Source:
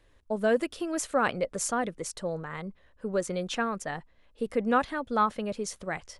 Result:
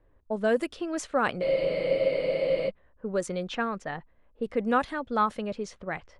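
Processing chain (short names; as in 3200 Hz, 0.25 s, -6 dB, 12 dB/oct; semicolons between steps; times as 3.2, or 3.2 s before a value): low-pass opened by the level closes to 1100 Hz, open at -23 dBFS; spectral freeze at 1.44, 1.25 s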